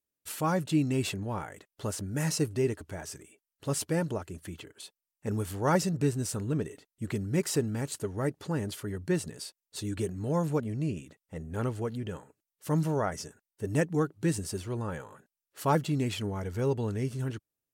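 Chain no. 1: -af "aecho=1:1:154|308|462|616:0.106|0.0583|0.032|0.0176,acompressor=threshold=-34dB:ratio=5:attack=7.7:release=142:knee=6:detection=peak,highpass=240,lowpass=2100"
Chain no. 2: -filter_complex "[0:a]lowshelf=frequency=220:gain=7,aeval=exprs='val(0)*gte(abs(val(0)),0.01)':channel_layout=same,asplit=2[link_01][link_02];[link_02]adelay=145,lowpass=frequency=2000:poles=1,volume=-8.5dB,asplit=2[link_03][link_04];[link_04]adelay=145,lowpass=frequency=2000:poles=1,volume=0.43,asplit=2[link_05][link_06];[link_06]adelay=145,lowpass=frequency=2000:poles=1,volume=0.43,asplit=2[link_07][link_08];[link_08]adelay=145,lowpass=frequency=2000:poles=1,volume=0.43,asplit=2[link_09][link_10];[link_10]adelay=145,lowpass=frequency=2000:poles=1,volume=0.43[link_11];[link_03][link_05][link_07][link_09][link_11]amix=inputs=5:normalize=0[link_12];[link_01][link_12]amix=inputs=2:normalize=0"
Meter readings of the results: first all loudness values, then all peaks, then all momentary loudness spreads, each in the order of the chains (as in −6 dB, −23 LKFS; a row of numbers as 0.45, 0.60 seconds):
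−43.0, −28.0 LKFS; −24.5, −11.0 dBFS; 10, 13 LU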